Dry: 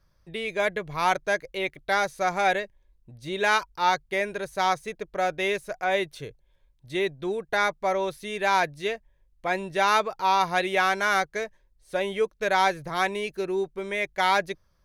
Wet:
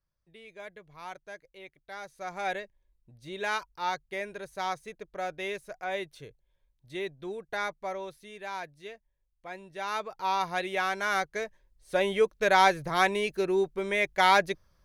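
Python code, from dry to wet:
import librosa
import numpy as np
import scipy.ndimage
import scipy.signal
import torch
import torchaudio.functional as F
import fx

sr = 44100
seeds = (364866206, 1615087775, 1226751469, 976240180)

y = fx.gain(x, sr, db=fx.line((1.91, -19.0), (2.51, -8.5), (7.74, -8.5), (8.46, -15.0), (9.7, -15.0), (10.24, -6.5), (10.91, -6.5), (12.01, 1.0)))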